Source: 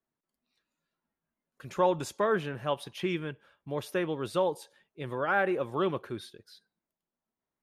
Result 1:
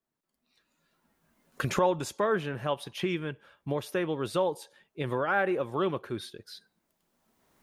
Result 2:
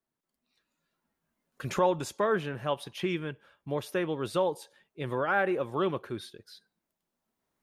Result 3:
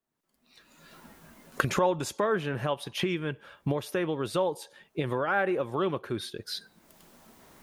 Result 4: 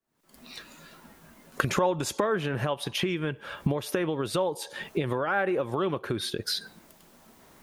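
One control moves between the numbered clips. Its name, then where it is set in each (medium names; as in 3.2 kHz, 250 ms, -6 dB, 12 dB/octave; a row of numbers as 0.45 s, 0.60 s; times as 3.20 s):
recorder AGC, rising by: 14 dB/s, 5.3 dB/s, 36 dB/s, 91 dB/s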